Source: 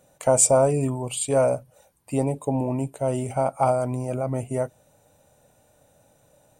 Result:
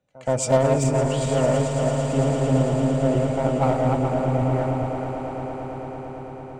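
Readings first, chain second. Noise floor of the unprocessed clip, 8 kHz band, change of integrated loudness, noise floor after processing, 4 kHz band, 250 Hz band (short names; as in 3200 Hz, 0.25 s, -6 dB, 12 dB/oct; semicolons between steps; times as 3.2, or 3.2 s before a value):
-61 dBFS, -8.0 dB, +1.5 dB, -37 dBFS, n/a, +5.5 dB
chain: regenerating reverse delay 0.21 s, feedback 61%, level -2.5 dB; air absorption 180 m; pre-echo 0.124 s -18 dB; in parallel at -6 dB: overloaded stage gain 21.5 dB; on the sum: bell 680 Hz -5.5 dB 2.1 oct; on a send: swelling echo 0.112 s, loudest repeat 8, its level -12 dB; on the sum: three-band expander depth 40%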